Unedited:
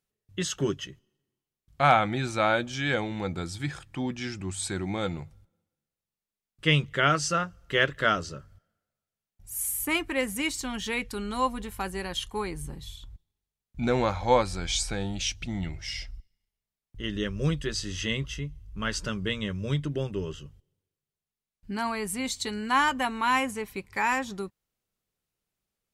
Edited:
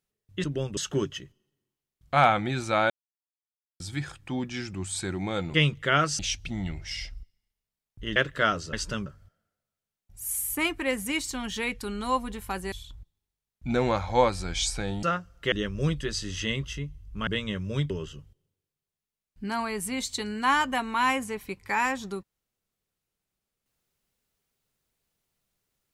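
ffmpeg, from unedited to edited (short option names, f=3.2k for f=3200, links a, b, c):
-filter_complex "[0:a]asplit=15[a][b][c][d][e][f][g][h][i][j][k][l][m][n][o];[a]atrim=end=0.442[p];[b]atrim=start=19.838:end=20.172[q];[c]atrim=start=0.438:end=2.57,asetpts=PTS-STARTPTS,afade=t=out:st=2.128:d=0.004:c=hsin[r];[d]atrim=start=2.57:end=3.47,asetpts=PTS-STARTPTS,volume=0[s];[e]atrim=start=3.47:end=5.212,asetpts=PTS-STARTPTS,afade=t=in:d=0.004:c=hsin[t];[f]atrim=start=6.648:end=7.302[u];[g]atrim=start=15.158:end=17.132[v];[h]atrim=start=7.788:end=8.362[w];[i]atrim=start=18.878:end=19.212[x];[j]atrim=start=8.358:end=12.022[y];[k]atrim=start=12.848:end=15.162[z];[l]atrim=start=7.298:end=7.792[aa];[m]atrim=start=17.128:end=18.882[ab];[n]atrim=start=19.208:end=19.842[ac];[o]atrim=start=20.168[ad];[p][q]acrossfade=d=0.004:c1=hsin:c2=hsin[ae];[r][s][t]concat=n=3:v=0:a=1[af];[ae][af]acrossfade=d=0.004:c1=hsin:c2=hsin[ag];[ag][u]acrossfade=d=0.004:c1=hsin:c2=hsin[ah];[ah][v]acrossfade=d=0.004:c1=hsin:c2=hsin[ai];[ai][w]acrossfade=d=0.004:c1=hsin:c2=hsin[aj];[aj][x]acrossfade=d=0.004:c1=hsin:c2=hsin[ak];[ak][y]acrossfade=d=0.004:c1=hsin:c2=hsin[al];[al][z]acrossfade=d=0.004:c1=hsin:c2=hsin[am];[am][aa]acrossfade=d=0.004:c1=hsin:c2=hsin[an];[an][ab]acrossfade=d=0.004:c1=hsin:c2=hsin[ao];[ao][ac]acrossfade=d=0.004:c1=hsin:c2=hsin[ap];[ap][ad]acrossfade=d=0.004:c1=hsin:c2=hsin"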